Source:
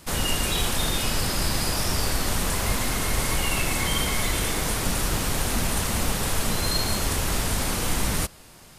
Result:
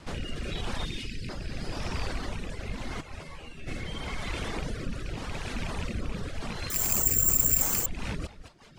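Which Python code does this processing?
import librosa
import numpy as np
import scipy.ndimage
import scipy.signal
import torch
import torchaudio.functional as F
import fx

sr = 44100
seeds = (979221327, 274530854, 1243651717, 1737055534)

p1 = fx.rattle_buzz(x, sr, strikes_db=-24.0, level_db=-18.0)
p2 = fx.over_compress(p1, sr, threshold_db=-32.0, ratio=-1.0)
p3 = p1 + (p2 * 10.0 ** (1.0 / 20.0))
p4 = fx.cheby1_bandstop(p3, sr, low_hz=360.0, high_hz=2200.0, order=2, at=(0.85, 1.29))
p5 = fx.comb_fb(p4, sr, f0_hz=80.0, decay_s=0.42, harmonics='all', damping=0.0, mix_pct=90, at=(3.0, 3.66), fade=0.02)
p6 = p5 + fx.echo_single(p5, sr, ms=216, db=-10.5, dry=0)
p7 = fx.rotary_switch(p6, sr, hz=0.85, then_hz=6.0, switch_at_s=7.49)
p8 = fx.high_shelf(p7, sr, hz=4700.0, db=-6.0)
p9 = fx.dereverb_blind(p8, sr, rt60_s=1.0)
p10 = fx.air_absorb(p9, sr, metres=83.0)
p11 = fx.resample_bad(p10, sr, factor=6, down='filtered', up='zero_stuff', at=(6.7, 7.86))
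y = p11 * 10.0 ** (-7.0 / 20.0)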